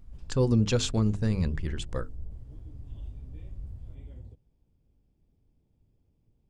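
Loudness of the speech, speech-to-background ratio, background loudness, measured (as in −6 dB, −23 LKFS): −28.0 LKFS, 17.0 dB, −45.0 LKFS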